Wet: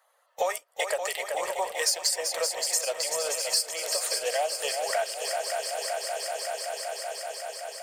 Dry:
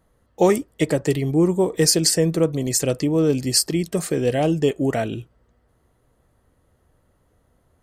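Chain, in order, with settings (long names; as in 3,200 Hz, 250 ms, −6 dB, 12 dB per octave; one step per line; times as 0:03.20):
spectral magnitudes quantised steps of 15 dB
Butterworth high-pass 570 Hz 48 dB per octave
leveller curve on the samples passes 1
echo machine with several playback heads 190 ms, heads second and third, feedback 73%, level −11 dB
downward compressor 3 to 1, threshold −35 dBFS, peak gain reduction 17 dB
level +6 dB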